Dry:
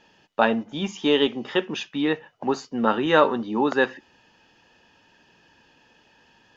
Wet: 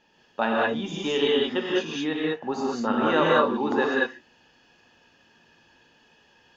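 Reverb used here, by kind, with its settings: gated-style reverb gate 230 ms rising, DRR -4.5 dB; trim -6.5 dB

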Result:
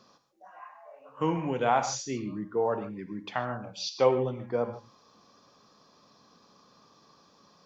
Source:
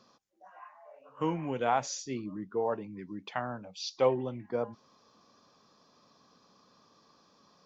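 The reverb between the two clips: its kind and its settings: gated-style reverb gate 170 ms flat, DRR 8.5 dB; trim +3 dB

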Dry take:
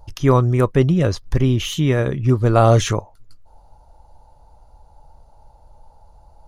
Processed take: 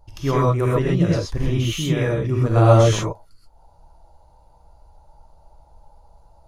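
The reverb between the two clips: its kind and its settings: gated-style reverb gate 150 ms rising, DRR -5.5 dB; trim -8 dB

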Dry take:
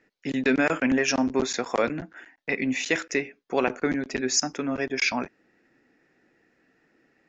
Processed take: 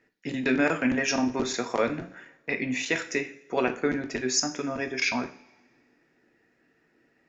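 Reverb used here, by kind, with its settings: two-slope reverb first 0.43 s, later 1.7 s, from -22 dB, DRR 5.5 dB; trim -2.5 dB

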